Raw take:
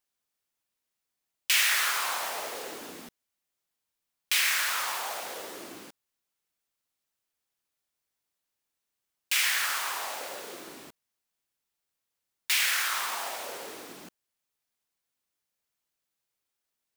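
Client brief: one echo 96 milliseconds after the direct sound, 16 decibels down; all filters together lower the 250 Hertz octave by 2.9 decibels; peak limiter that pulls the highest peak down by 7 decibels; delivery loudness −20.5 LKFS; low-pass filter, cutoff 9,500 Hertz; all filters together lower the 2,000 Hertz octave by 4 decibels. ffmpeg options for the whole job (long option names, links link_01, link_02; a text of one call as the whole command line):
ffmpeg -i in.wav -af "lowpass=9500,equalizer=frequency=250:width_type=o:gain=-4,equalizer=frequency=2000:width_type=o:gain=-5,alimiter=limit=-21dB:level=0:latency=1,aecho=1:1:96:0.158,volume=11.5dB" out.wav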